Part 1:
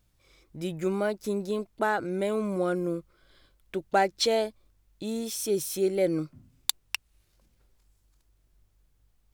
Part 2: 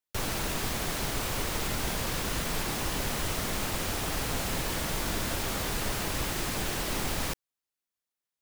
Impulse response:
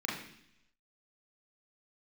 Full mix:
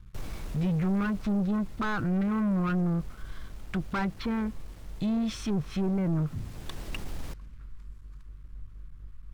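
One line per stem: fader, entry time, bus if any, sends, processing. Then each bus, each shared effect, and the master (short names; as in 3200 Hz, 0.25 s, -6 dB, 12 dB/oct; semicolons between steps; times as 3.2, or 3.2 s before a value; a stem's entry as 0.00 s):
+1.0 dB, 0.00 s, no send, treble ducked by the level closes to 1100 Hz, closed at -24 dBFS; EQ curve 190 Hz 0 dB, 630 Hz -25 dB, 1100 Hz +8 dB, 5400 Hz -1 dB; soft clip -33 dBFS, distortion -7 dB
6.27 s -20 dB -> 6.81 s -9.5 dB, 0.00 s, no send, bell 14000 Hz +7.5 dB 2.5 oct; auto duck -12 dB, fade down 1.65 s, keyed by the first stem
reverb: off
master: tilt -3 dB/oct; sample leveller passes 2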